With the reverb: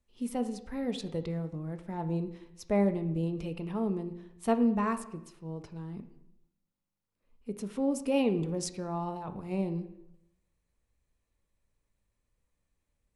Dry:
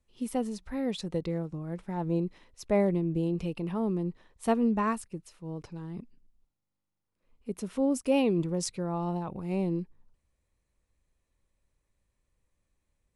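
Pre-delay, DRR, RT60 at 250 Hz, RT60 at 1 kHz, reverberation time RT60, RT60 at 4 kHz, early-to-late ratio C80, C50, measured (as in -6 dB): 3 ms, 8.5 dB, 0.90 s, 0.80 s, 0.85 s, 0.70 s, 15.0 dB, 12.5 dB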